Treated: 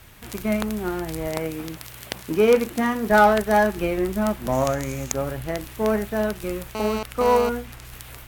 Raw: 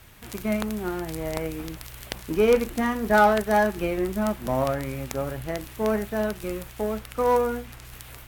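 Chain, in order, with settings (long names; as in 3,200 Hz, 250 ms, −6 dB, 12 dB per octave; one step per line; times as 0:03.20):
0:01.27–0:03.12: high-pass filter 90 Hz 12 dB per octave
0:04.52–0:05.12: parametric band 6,600 Hz +14 dB 0.36 octaves
0:06.75–0:07.49: phone interference −31 dBFS
level +2.5 dB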